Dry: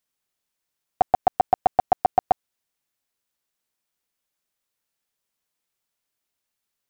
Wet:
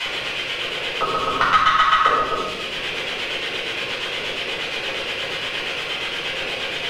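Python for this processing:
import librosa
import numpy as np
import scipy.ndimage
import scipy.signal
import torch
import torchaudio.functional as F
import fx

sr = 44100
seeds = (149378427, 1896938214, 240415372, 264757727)

y = fx.band_invert(x, sr, width_hz=2000)
y = fx.high_shelf(y, sr, hz=2500.0, db=9.5)
y = y + 0.95 * np.pad(y, (int(4.6 * sr / 1000.0), 0))[:len(y)]
y = fx.leveller(y, sr, passes=2)
y = fx.over_compress(y, sr, threshold_db=-20.0, ratio=-1.0)
y = fx.echo_diffused(y, sr, ms=569, feedback_pct=43, wet_db=-3.0)
y = np.where(np.abs(y) >= 10.0 ** (-19.5 / 20.0), y, 0.0)
y = fx.dmg_noise_colour(y, sr, seeds[0], colour='blue', level_db=-39.0)
y = fx.filter_lfo_lowpass(y, sr, shape='square', hz=8.5, low_hz=480.0, high_hz=2900.0, q=3.6)
y = fx.room_shoebox(y, sr, seeds[1], volume_m3=310.0, walls='mixed', distance_m=4.9)
y = fx.band_squash(y, sr, depth_pct=70)
y = y * 10.0 ** (6.5 / 20.0)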